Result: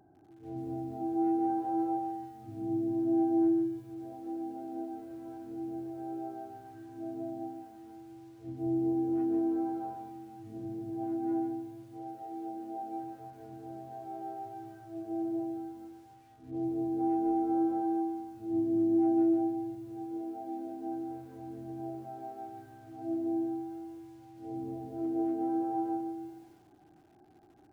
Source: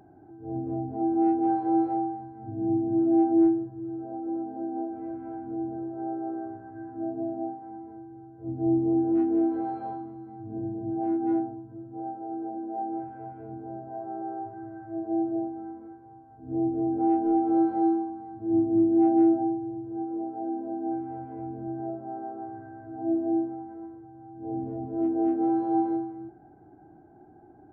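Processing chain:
feedback echo at a low word length 145 ms, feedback 35%, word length 9 bits, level −6 dB
level −8 dB

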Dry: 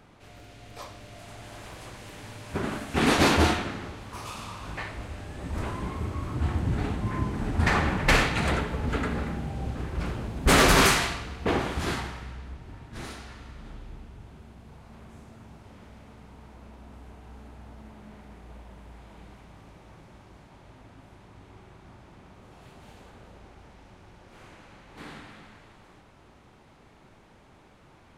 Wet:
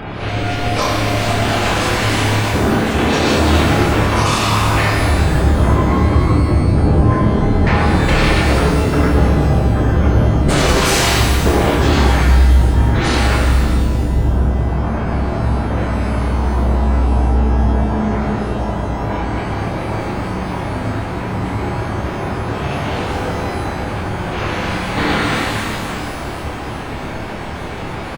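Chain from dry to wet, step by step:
dynamic equaliser 1,700 Hz, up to −5 dB, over −41 dBFS, Q 0.73
gate on every frequency bin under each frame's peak −25 dB strong
reversed playback
downward compressor, threshold −33 dBFS, peak gain reduction 15.5 dB
reversed playback
soft clipping −32.5 dBFS, distortion −15 dB
double-tracking delay 28 ms −4 dB
boost into a limiter +35 dB
reverb with rising layers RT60 1.7 s, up +12 semitones, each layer −8 dB, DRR 0.5 dB
level −9 dB

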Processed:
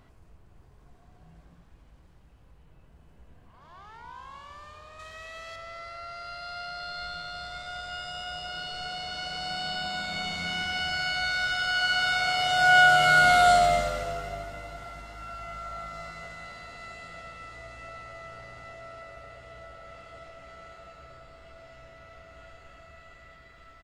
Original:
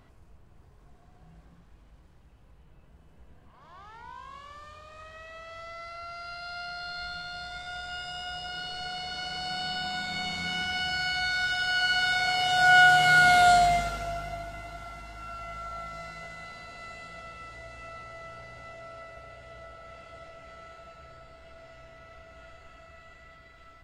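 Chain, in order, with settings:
0:04.99–0:05.56: high-shelf EQ 3,000 Hz +10.5 dB
echo with shifted repeats 233 ms, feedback 30%, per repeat −100 Hz, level −12.5 dB

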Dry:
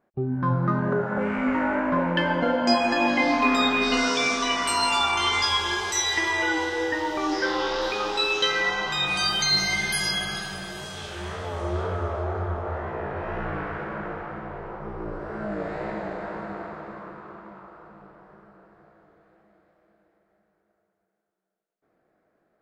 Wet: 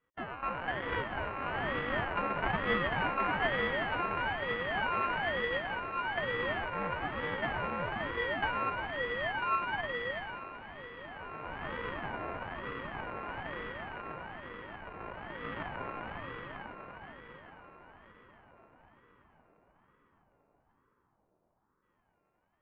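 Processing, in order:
samples sorted by size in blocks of 32 samples
single-sideband voice off tune −160 Hz 420–2,500 Hz
feedback echo with a low-pass in the loop 648 ms, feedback 74%, low-pass 1,800 Hz, level −15.5 dB
ring modulator whose carrier an LFO sweeps 440 Hz, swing 70%, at 1.1 Hz
level −3.5 dB

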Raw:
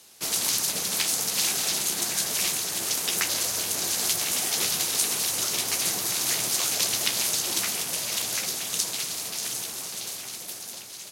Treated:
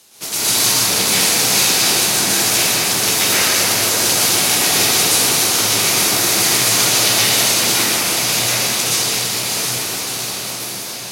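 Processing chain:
convolution reverb RT60 3.4 s, pre-delay 110 ms, DRR −11.5 dB
level +3 dB

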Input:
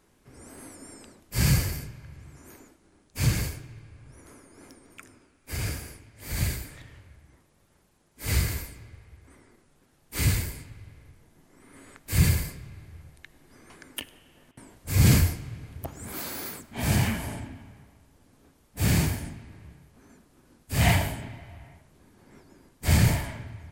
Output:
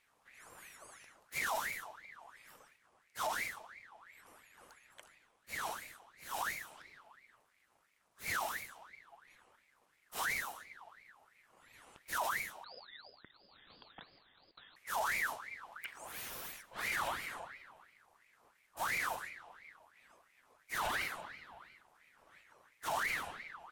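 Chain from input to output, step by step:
brickwall limiter −18.5 dBFS, peak gain reduction 10.5 dB
0:12.64–0:14.76: voice inversion scrambler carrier 2,800 Hz
ring modulator whose carrier an LFO sweeps 1,500 Hz, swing 50%, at 2.9 Hz
level −7 dB

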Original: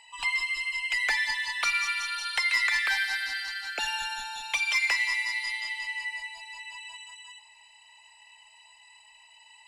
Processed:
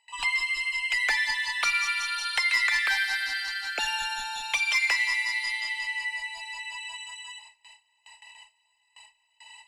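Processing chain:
noise gate with hold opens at −44 dBFS
in parallel at −1 dB: downward compressor, threshold −40 dBFS, peak gain reduction 17 dB

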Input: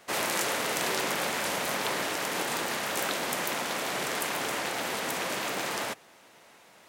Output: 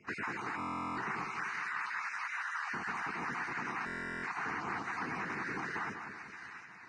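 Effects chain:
time-frequency cells dropped at random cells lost 31%
0:01.24–0:02.67: high-pass filter 1,100 Hz 24 dB per octave
downward compressor 6 to 1, threshold −35 dBFS, peak gain reduction 8 dB
high-frequency loss of the air 280 metres
phaser with its sweep stopped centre 1,400 Hz, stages 4
echo with a time of its own for lows and highs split 1,500 Hz, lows 192 ms, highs 711 ms, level −7 dB
buffer that repeats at 0:00.58/0:03.85, samples 1,024, times 16
level +5 dB
Ogg Vorbis 16 kbit/s 22,050 Hz

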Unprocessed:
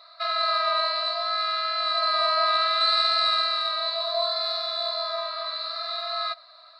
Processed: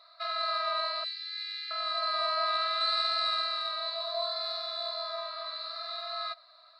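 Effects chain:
0:01.04–0:01.71: elliptic band-stop filter 270–1,900 Hz, stop band 40 dB
level −7 dB

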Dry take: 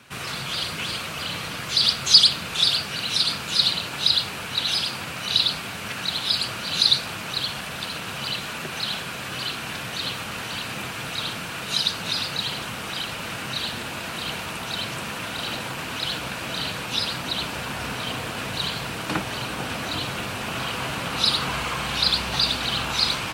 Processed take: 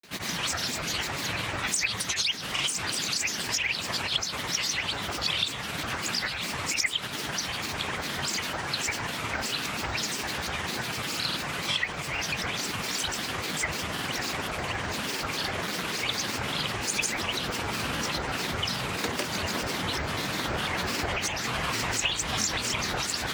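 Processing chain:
downward compressor 6 to 1, threshold −25 dBFS, peak gain reduction 16 dB
granular cloud, pitch spread up and down by 12 semitones
level +1.5 dB

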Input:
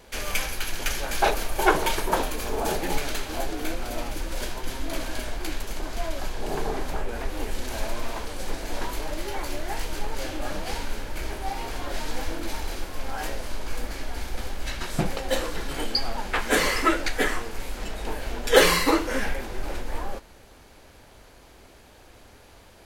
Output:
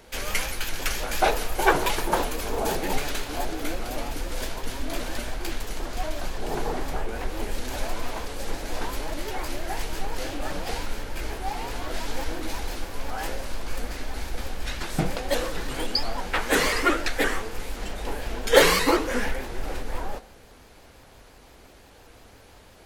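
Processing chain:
convolution reverb RT60 0.65 s, pre-delay 3 ms, DRR 13 dB
pitch modulation by a square or saw wave saw up 5.8 Hz, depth 160 cents

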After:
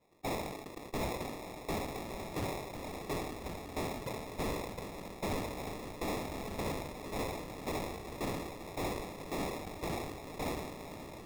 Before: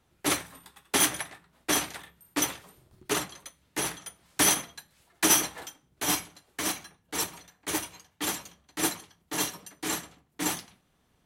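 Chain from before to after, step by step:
Butterworth band-reject 1,400 Hz, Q 4.4
on a send: feedback delay with all-pass diffusion 1,155 ms, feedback 48%, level −11 dB
on the sum: harmonic and percussive parts rebalanced harmonic −8 dB
in parallel at −0.5 dB: downward compressor, threshold −43 dBFS, peak gain reduction 22 dB
on the sum: high-pass filter 320 Hz
transient designer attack +8 dB, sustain −3 dB
decimation without filtering 29×
soft clipping −30.5 dBFS, distortion −2 dB
level that may fall only so fast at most 41 dB per second
level −2.5 dB

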